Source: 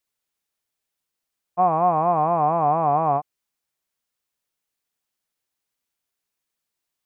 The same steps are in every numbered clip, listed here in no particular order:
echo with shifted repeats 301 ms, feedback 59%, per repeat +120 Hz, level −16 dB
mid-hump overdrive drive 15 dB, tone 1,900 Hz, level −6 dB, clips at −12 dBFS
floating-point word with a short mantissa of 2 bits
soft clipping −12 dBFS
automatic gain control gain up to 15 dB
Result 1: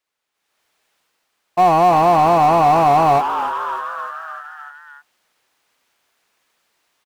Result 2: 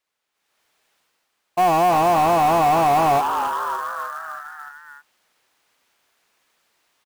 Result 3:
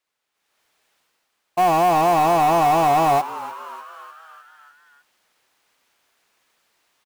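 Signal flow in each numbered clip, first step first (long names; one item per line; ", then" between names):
floating-point word with a short mantissa, then soft clipping, then automatic gain control, then echo with shifted repeats, then mid-hump overdrive
automatic gain control, then echo with shifted repeats, then mid-hump overdrive, then soft clipping, then floating-point word with a short mantissa
automatic gain control, then mid-hump overdrive, then soft clipping, then floating-point word with a short mantissa, then echo with shifted repeats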